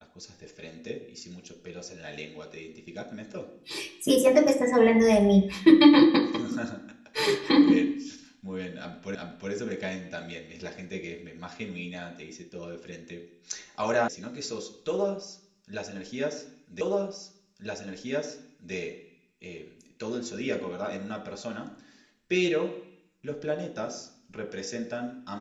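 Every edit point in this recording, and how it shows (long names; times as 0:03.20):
0:09.15: the same again, the last 0.37 s
0:14.08: cut off before it has died away
0:16.81: the same again, the last 1.92 s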